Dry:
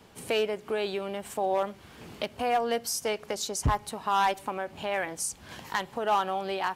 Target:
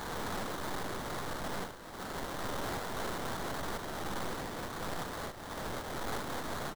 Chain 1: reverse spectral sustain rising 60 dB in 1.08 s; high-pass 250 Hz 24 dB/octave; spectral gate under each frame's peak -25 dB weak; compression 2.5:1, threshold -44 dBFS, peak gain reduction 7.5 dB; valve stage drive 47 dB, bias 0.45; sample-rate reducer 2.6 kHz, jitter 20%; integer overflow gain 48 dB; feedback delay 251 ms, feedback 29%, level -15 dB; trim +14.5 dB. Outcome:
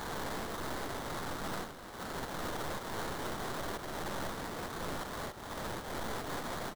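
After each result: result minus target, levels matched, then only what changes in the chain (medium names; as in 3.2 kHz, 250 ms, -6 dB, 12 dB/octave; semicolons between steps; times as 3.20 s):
echo 161 ms early; compression: peak gain reduction +7.5 dB
change: feedback delay 412 ms, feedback 29%, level -15 dB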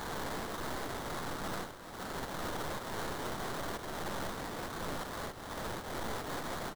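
compression: peak gain reduction +7.5 dB
remove: compression 2.5:1, threshold -44 dBFS, peak gain reduction 7.5 dB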